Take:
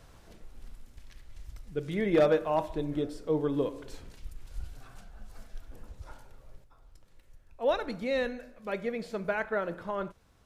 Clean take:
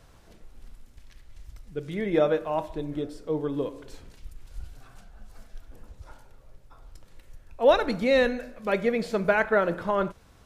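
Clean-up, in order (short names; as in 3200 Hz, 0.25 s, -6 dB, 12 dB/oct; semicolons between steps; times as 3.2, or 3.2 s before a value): clip repair -17 dBFS; gain 0 dB, from 6.64 s +8.5 dB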